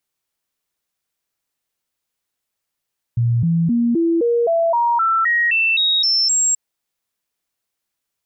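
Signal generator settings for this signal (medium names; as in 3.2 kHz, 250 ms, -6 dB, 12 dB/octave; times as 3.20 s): stepped sine 118 Hz up, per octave 2, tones 13, 0.26 s, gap 0.00 s -13.5 dBFS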